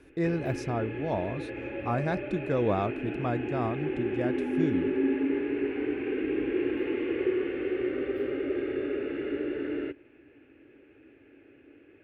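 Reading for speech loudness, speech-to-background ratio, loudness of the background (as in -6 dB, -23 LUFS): -32.0 LUFS, -0.5 dB, -31.5 LUFS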